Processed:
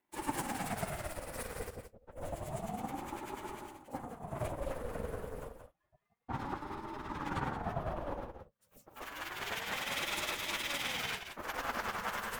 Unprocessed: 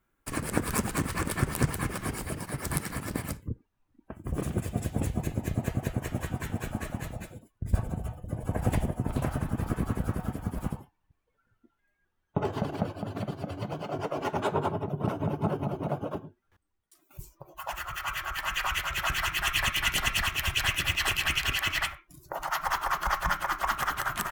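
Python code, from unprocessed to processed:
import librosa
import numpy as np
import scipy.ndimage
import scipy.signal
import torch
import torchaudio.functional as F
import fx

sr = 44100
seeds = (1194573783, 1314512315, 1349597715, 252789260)

y = np.where(x < 0.0, 10.0 ** (-12.0 / 20.0) * x, x)
y = fx.low_shelf_res(y, sr, hz=180.0, db=-11.5, q=3.0)
y = fx.stretch_vocoder_free(y, sr, factor=0.51)
y = y + 10.0 ** (-8.5 / 20.0) * np.pad(y, (int(174 * sr / 1000.0), 0))[:len(y)]
y = fx.ring_lfo(y, sr, carrier_hz=410.0, swing_pct=50, hz=0.29)
y = y * librosa.db_to_amplitude(1.0)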